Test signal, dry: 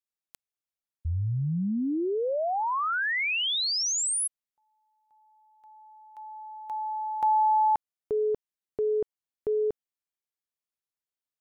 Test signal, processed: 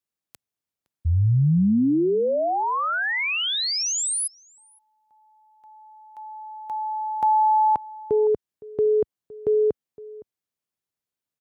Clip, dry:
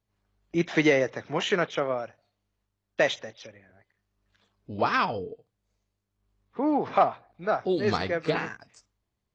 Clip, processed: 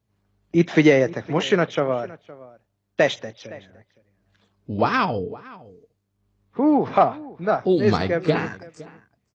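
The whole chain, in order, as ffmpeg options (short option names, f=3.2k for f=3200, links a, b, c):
-filter_complex "[0:a]highpass=79,lowshelf=f=420:g=8.5,asplit=2[a][b];[b]adelay=513.1,volume=-20dB,highshelf=f=4k:g=-11.5[c];[a][c]amix=inputs=2:normalize=0,volume=2.5dB"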